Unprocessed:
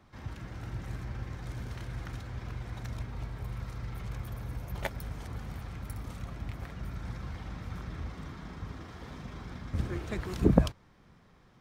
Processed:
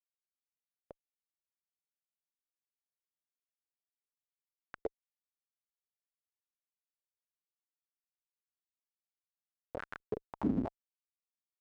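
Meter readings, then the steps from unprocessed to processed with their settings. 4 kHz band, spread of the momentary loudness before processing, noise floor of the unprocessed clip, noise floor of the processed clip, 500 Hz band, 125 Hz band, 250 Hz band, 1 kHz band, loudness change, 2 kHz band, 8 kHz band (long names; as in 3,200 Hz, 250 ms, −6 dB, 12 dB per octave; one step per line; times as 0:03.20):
below −20 dB, 8 LU, −61 dBFS, below −85 dBFS, −7.5 dB, −18.5 dB, −7.0 dB, −8.5 dB, −2.5 dB, −11.0 dB, below −25 dB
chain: comparator with hysteresis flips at −26.5 dBFS
band-pass on a step sequencer 4.6 Hz 270–1,500 Hz
level +16 dB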